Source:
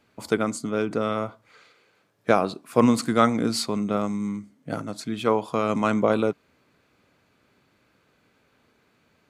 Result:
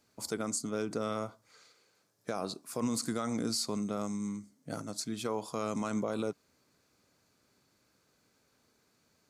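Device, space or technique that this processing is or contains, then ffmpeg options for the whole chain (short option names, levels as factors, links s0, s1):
over-bright horn tweeter: -af "highshelf=f=4000:t=q:w=1.5:g=9.5,alimiter=limit=0.178:level=0:latency=1:release=75,volume=0.398"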